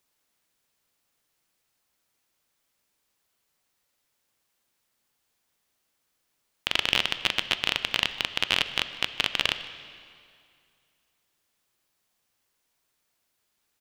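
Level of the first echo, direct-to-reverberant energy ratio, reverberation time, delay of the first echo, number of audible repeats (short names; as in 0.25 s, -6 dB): -22.0 dB, 10.5 dB, 2.3 s, 0.153 s, 1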